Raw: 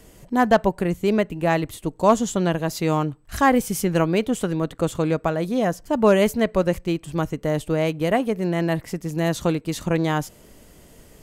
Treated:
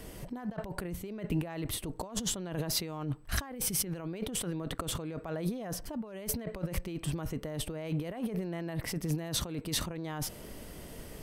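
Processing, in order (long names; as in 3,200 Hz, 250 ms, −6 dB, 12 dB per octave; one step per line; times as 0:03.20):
parametric band 7,000 Hz −9.5 dB 0.21 octaves
compressor whose output falls as the input rises −31 dBFS, ratio −1
level −5.5 dB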